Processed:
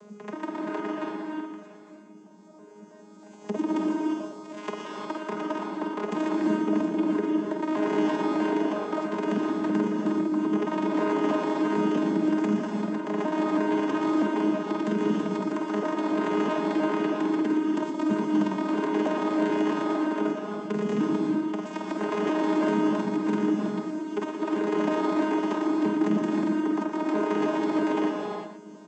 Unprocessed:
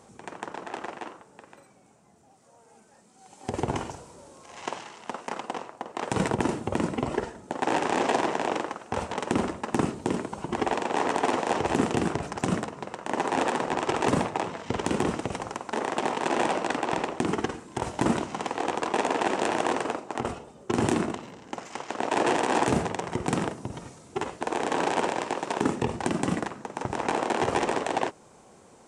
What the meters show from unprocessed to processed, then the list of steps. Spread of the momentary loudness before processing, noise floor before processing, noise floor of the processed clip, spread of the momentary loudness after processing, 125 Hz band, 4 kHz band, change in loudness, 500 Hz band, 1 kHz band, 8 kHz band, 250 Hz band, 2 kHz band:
12 LU, −56 dBFS, −48 dBFS, 8 LU, −3.0 dB, −5.5 dB, +2.0 dB, +1.0 dB, −3.5 dB, below −10 dB, +6.5 dB, −3.5 dB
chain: vocoder with an arpeggio as carrier bare fifth, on G#3, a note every 323 ms
notch filter 840 Hz, Q 12
in parallel at +3 dB: downward compressor, threshold −38 dBFS, peak gain reduction 20 dB
on the sum: brickwall limiter −18 dBFS, peak gain reduction 8.5 dB
on a send: single-tap delay 118 ms −9 dB
on the sum: reverb whose tail is shaped and stops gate 380 ms rising, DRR 0.5 dB

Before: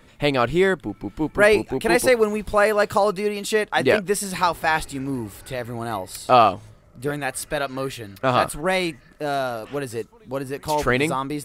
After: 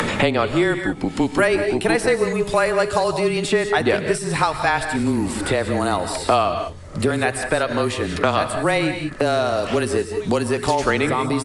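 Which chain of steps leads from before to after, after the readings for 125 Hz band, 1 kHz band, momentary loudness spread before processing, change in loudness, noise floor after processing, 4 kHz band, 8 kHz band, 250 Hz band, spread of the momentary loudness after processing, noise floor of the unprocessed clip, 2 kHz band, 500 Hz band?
+5.0 dB, +0.5 dB, 14 LU, +1.5 dB, −32 dBFS, +2.5 dB, +1.5 dB, +4.5 dB, 4 LU, −51 dBFS, +1.5 dB, +1.5 dB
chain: frequency shifter −21 Hz
in parallel at −0.5 dB: upward compression, threshold −21 dBFS
on the sum: downsampling to 22,050 Hz
reverb whose tail is shaped and stops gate 210 ms rising, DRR 9 dB
multiband upward and downward compressor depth 100%
level −5.5 dB

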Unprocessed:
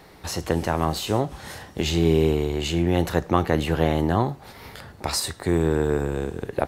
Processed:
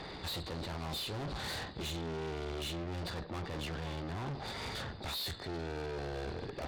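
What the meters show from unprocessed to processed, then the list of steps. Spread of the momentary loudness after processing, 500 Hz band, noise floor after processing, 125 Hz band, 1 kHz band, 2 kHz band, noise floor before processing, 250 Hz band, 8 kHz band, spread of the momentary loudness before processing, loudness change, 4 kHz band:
3 LU, −18.0 dB, −46 dBFS, −15.5 dB, −15.0 dB, −10.5 dB, −47 dBFS, −18.5 dB, −15.5 dB, 12 LU, −15.5 dB, −8.0 dB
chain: hearing-aid frequency compression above 3,400 Hz 4 to 1
reversed playback
downward compressor 6 to 1, threshold −29 dBFS, peak gain reduction 15 dB
reversed playback
tube saturation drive 43 dB, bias 0.45
level +6 dB

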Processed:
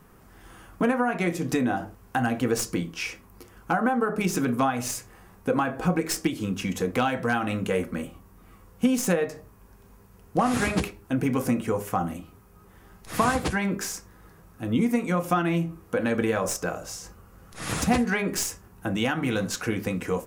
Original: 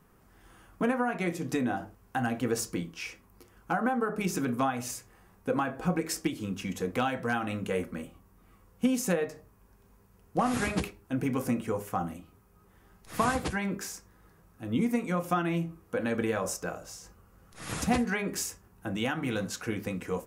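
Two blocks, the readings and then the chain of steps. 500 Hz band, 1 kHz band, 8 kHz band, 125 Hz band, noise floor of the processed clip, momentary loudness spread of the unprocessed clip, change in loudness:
+5.0 dB, +4.5 dB, +5.5 dB, +5.0 dB, −54 dBFS, 11 LU, +5.0 dB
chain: stylus tracing distortion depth 0.021 ms
in parallel at −1.5 dB: downward compressor, threshold −35 dBFS, peak gain reduction 13.5 dB
on the sum: level +2.5 dB

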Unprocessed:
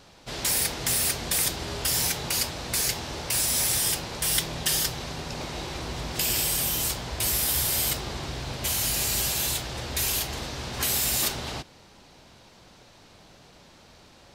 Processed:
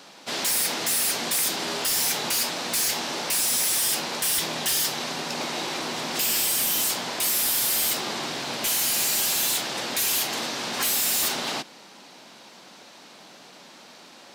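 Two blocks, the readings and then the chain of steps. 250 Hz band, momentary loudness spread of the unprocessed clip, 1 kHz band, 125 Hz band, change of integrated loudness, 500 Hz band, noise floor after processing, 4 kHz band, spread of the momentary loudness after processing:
+1.5 dB, 11 LU, +4.5 dB, −10.0 dB, +2.5 dB, +2.5 dB, −48 dBFS, +3.0 dB, 8 LU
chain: high-pass filter 210 Hz 24 dB per octave
parametric band 420 Hz −4 dB 1.2 octaves
in parallel at +2 dB: brickwall limiter −19 dBFS, peak gain reduction 10 dB
on the sum: hard clipping −21 dBFS, distortion −9 dB

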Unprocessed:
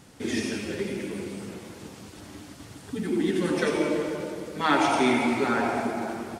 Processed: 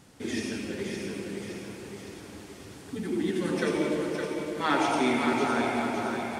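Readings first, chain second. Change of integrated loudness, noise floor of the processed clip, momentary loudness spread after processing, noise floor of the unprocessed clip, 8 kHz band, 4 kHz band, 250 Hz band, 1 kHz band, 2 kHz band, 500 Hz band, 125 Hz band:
−2.5 dB, −47 dBFS, 17 LU, −47 dBFS, −2.0 dB, −2.0 dB, −2.0 dB, −2.5 dB, −2.5 dB, −2.0 dB, −2.0 dB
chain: echo with a time of its own for lows and highs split 340 Hz, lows 257 ms, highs 563 ms, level −5.5 dB
level −3.5 dB

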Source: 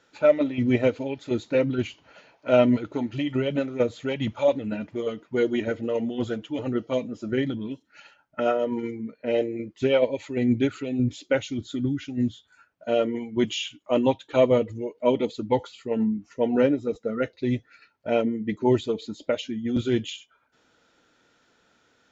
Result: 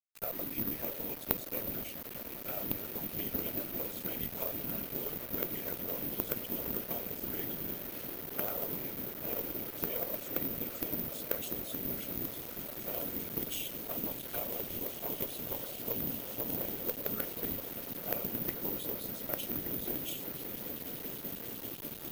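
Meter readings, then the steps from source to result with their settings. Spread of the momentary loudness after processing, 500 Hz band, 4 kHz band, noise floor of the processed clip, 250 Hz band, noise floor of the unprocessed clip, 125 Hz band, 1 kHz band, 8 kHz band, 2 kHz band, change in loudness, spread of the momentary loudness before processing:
5 LU, −18.5 dB, −8.5 dB, −45 dBFS, −17.0 dB, −66 dBFS, −14.5 dB, −13.0 dB, can't be measured, −11.5 dB, −10.0 dB, 9 LU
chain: high-shelf EQ 4,400 Hz +10 dB
hum removal 171.7 Hz, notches 35
brickwall limiter −16 dBFS, peak gain reduction 11.5 dB
downward compressor 8 to 1, threshold −26 dBFS, peak gain reduction 7 dB
on a send: echo that builds up and dies away 196 ms, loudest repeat 8, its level −15 dB
on the sum: random phases in short frames
bit-depth reduction 6 bits, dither none
harmonic generator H 3 −7 dB, 5 −18 dB, 6 −32 dB, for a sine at −14.5 dBFS
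bad sample-rate conversion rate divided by 3×, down filtered, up zero stuff
level −1 dB

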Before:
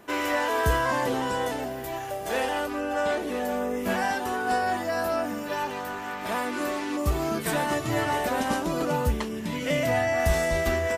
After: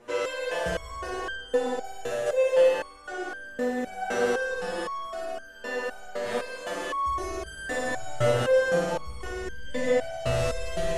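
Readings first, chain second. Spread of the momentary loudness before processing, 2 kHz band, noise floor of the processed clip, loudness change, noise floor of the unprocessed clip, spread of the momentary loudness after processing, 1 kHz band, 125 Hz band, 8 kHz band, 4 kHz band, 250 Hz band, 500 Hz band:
7 LU, −3.0 dB, −45 dBFS, −1.5 dB, −34 dBFS, 13 LU, −5.5 dB, −4.0 dB, −4.0 dB, −3.0 dB, −7.0 dB, +1.5 dB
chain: parametric band 490 Hz +11.5 dB 0.32 octaves
flutter between parallel walls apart 9.6 metres, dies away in 1.4 s
in parallel at +2.5 dB: brickwall limiter −16 dBFS, peak gain reduction 8.5 dB
on the sum: mains-hum notches 50/100/150/200/250 Hz
comb and all-pass reverb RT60 0.91 s, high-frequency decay 0.5×, pre-delay 110 ms, DRR 0 dB
hard clipping −5 dBFS, distortion −22 dB
low-pass filter 10,000 Hz 24 dB per octave
low-shelf EQ 71 Hz +9 dB
step-sequenced resonator 3.9 Hz 120–1,600 Hz

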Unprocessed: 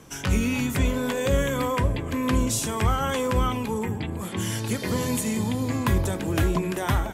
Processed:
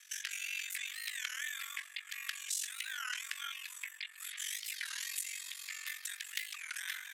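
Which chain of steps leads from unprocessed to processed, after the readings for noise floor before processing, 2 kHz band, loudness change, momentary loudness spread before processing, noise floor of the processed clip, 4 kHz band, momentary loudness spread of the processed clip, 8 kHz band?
−34 dBFS, −6.5 dB, −14.0 dB, 5 LU, −55 dBFS, −5.5 dB, 5 LU, −7.0 dB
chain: Chebyshev high-pass filter 1,600 Hz, order 4
downward compressor 2 to 1, threshold −39 dBFS, peak gain reduction 8 dB
frequency shifter +120 Hz
ring modulation 23 Hz
wow of a warped record 33 1/3 rpm, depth 250 cents
level +1.5 dB

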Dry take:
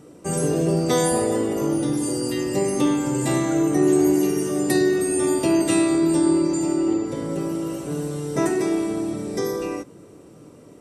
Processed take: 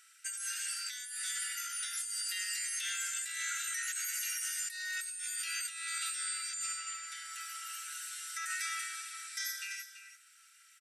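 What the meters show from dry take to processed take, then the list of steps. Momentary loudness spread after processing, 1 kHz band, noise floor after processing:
7 LU, −16.5 dB, −62 dBFS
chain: linear-phase brick-wall high-pass 1,300 Hz
single-tap delay 334 ms −11.5 dB
compressor whose output falls as the input rises −36 dBFS, ratio −1
level −2 dB

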